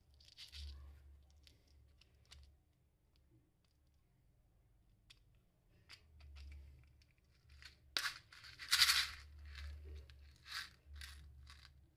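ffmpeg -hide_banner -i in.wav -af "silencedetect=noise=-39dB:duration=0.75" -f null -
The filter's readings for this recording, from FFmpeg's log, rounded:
silence_start: 0.00
silence_end: 7.97 | silence_duration: 7.97
silence_start: 9.59
silence_end: 10.52 | silence_duration: 0.94
silence_start: 11.04
silence_end: 11.97 | silence_duration: 0.93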